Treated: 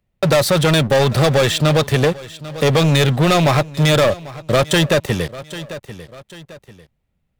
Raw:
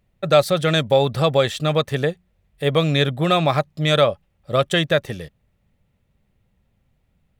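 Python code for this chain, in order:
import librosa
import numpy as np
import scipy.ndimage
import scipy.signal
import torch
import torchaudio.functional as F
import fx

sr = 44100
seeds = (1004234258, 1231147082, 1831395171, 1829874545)

y = fx.leveller(x, sr, passes=5)
y = fx.echo_feedback(y, sr, ms=794, feedback_pct=23, wet_db=-21.0)
y = fx.band_squash(y, sr, depth_pct=40)
y = y * librosa.db_to_amplitude(-7.5)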